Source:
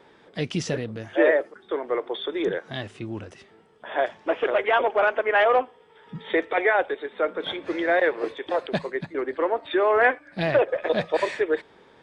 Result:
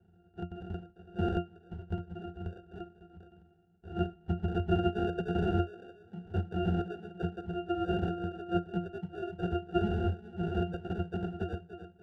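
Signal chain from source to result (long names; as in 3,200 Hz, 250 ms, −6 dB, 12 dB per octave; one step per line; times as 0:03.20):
wrap-around overflow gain 15.5 dB
high-pass filter sweep 1,100 Hz → 76 Hz, 0:04.22–0:07.61
on a send: bucket-brigade delay 294 ms, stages 1,024, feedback 42%, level −9 dB
on the sum: decimation without filtering 42×
resonances in every octave F, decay 0.18 s
level +1.5 dB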